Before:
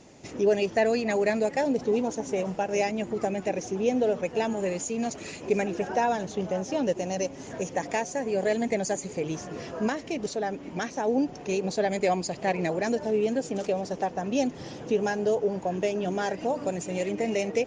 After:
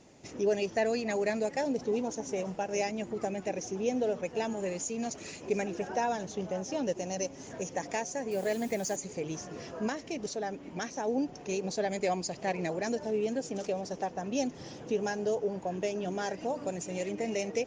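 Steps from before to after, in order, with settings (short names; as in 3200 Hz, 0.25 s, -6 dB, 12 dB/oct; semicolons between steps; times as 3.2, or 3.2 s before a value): dynamic EQ 5800 Hz, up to +6 dB, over -54 dBFS, Q 2.4; 8.31–8.96 requantised 8-bit, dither triangular; gain -5.5 dB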